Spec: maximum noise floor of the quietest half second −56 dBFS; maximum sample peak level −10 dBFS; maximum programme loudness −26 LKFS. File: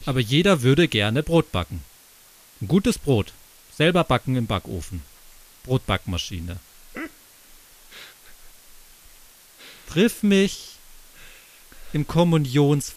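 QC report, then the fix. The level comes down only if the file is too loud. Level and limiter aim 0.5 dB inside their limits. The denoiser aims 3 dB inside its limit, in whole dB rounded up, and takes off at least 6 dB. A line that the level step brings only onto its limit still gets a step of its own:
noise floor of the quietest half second −51 dBFS: out of spec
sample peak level −5.5 dBFS: out of spec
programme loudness −21.5 LKFS: out of spec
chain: broadband denoise 6 dB, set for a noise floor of −51 dBFS
level −5 dB

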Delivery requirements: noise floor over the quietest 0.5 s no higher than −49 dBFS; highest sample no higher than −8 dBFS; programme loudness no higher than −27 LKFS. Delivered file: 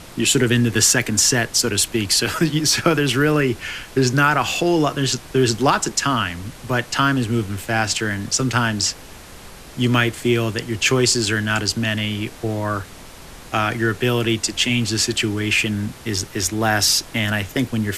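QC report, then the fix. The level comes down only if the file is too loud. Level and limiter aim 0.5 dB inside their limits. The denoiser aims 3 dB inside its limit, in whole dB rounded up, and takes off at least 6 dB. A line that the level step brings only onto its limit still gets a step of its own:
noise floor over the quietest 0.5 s −39 dBFS: out of spec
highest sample −1.5 dBFS: out of spec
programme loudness −19.0 LKFS: out of spec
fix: broadband denoise 6 dB, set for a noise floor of −39 dBFS
level −8.5 dB

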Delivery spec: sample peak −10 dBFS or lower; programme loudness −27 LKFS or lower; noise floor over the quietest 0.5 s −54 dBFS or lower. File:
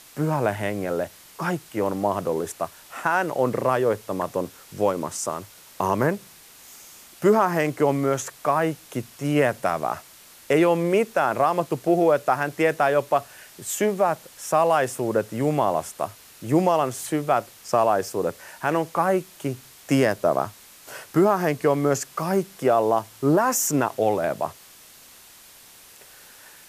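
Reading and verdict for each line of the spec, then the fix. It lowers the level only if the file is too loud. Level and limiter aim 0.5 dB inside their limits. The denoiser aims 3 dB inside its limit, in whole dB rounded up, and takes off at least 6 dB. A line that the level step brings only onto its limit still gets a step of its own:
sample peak −8.5 dBFS: out of spec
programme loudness −23.5 LKFS: out of spec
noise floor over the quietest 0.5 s −49 dBFS: out of spec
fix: broadband denoise 6 dB, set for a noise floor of −49 dBFS
level −4 dB

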